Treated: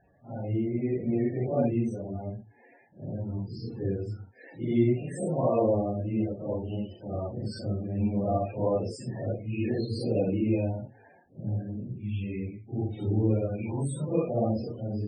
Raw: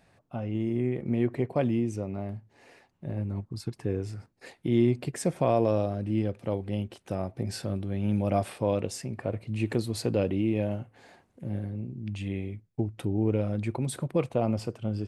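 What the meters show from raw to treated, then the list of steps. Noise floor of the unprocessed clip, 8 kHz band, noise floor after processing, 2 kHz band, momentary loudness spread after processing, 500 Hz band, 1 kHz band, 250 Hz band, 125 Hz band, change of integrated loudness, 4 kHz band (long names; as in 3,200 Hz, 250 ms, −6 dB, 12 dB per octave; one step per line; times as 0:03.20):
−67 dBFS, −7.0 dB, −58 dBFS, −4.5 dB, 11 LU, 0.0 dB, −1.0 dB, 0.0 dB, 0.0 dB, 0.0 dB, −5.5 dB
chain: random phases in long frames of 200 ms
spectral peaks only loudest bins 32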